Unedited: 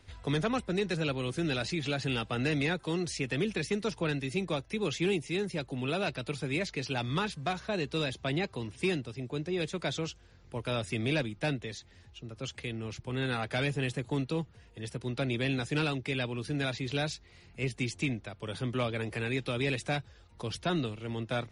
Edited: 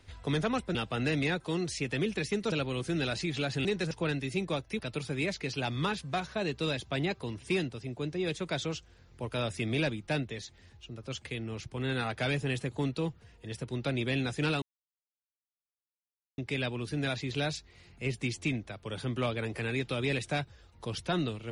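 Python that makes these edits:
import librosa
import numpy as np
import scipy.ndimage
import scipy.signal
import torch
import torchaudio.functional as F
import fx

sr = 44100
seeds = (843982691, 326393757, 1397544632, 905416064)

y = fx.edit(x, sr, fx.swap(start_s=0.75, length_s=0.26, other_s=2.14, other_length_s=1.77),
    fx.cut(start_s=4.79, length_s=1.33),
    fx.insert_silence(at_s=15.95, length_s=1.76), tone=tone)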